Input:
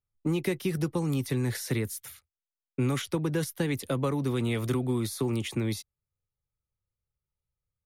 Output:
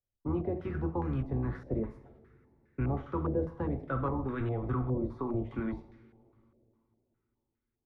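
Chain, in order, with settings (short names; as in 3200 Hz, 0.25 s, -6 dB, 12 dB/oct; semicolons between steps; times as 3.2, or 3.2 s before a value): octaver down 1 oct, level -2 dB; two-slope reverb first 0.56 s, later 3.5 s, from -22 dB, DRR 4 dB; stepped low-pass 4.9 Hz 590–1600 Hz; gain -8.5 dB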